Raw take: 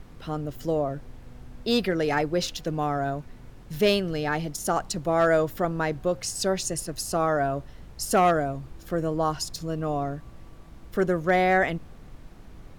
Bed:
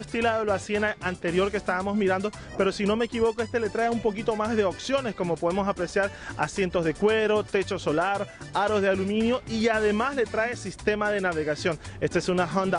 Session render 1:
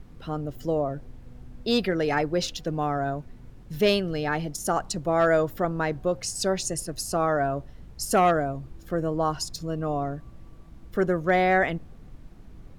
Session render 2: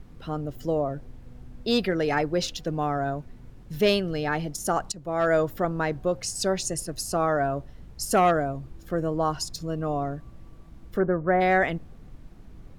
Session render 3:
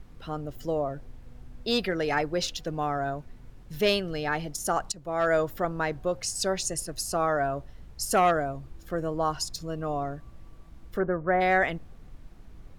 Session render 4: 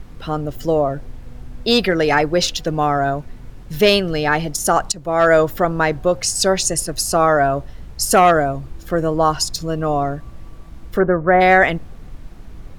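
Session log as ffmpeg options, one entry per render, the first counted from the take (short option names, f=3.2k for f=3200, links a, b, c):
-af "afftdn=nr=6:nf=-47"
-filter_complex "[0:a]asplit=3[a][b][c];[a]afade=t=out:st=10.98:d=0.02[d];[b]lowpass=f=1.7k:w=0.5412,lowpass=f=1.7k:w=1.3066,afade=t=in:st=10.98:d=0.02,afade=t=out:st=11.4:d=0.02[e];[c]afade=t=in:st=11.4:d=0.02[f];[d][e][f]amix=inputs=3:normalize=0,asplit=2[g][h];[g]atrim=end=4.92,asetpts=PTS-STARTPTS,afade=t=out:st=4.916:d=0.004:c=hsin:silence=0.199526[i];[h]atrim=start=4.92,asetpts=PTS-STARTPTS,afade=t=in:d=0.46:silence=0.199526[j];[i][j]concat=n=2:v=0:a=1"
-af "equalizer=f=200:w=0.45:g=-5"
-af "volume=11.5dB,alimiter=limit=-3dB:level=0:latency=1"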